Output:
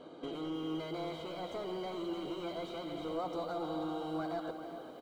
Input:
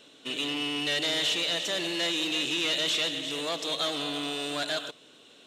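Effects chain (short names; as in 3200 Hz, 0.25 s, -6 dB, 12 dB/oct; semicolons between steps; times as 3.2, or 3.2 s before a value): compressor 6:1, threshold -38 dBFS, peak gain reduction 12.5 dB; hard clip -39 dBFS, distortion -11 dB; polynomial smoothing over 65 samples; doubler 13 ms -10.5 dB; outdoor echo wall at 74 m, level -10 dB; speed mistake 44.1 kHz file played as 48 kHz; lo-fi delay 0.316 s, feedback 35%, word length 11-bit, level -13 dB; gain +8 dB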